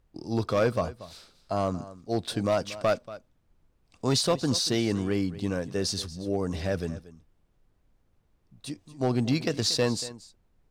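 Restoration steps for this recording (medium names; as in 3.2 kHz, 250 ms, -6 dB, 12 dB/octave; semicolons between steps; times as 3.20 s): clip repair -17 dBFS; expander -59 dBFS, range -21 dB; inverse comb 234 ms -17 dB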